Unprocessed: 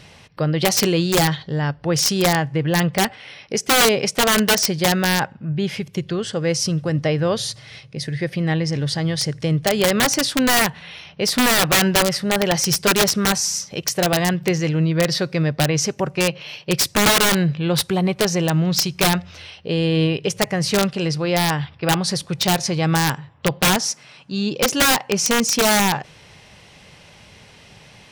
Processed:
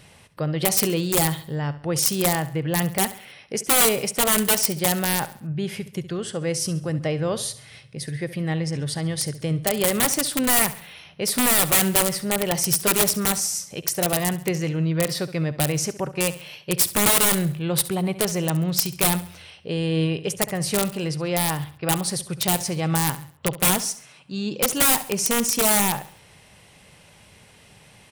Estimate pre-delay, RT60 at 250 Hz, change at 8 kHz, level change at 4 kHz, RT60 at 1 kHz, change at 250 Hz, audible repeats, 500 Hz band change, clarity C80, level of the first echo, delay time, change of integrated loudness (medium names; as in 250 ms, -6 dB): no reverb, no reverb, 0.0 dB, -6.5 dB, no reverb, -5.0 dB, 3, -5.0 dB, no reverb, -15.5 dB, 68 ms, -3.0 dB